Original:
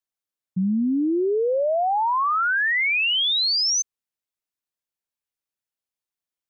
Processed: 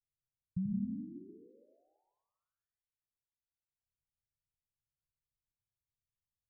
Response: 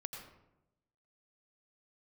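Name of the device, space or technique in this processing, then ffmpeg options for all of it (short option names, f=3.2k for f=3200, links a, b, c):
club heard from the street: -filter_complex "[0:a]alimiter=level_in=4dB:limit=-24dB:level=0:latency=1,volume=-4dB,lowpass=f=130:w=0.5412,lowpass=f=130:w=1.3066[a];[1:a]atrim=start_sample=2205[b];[a][b]afir=irnorm=-1:irlink=0,volume=14dB"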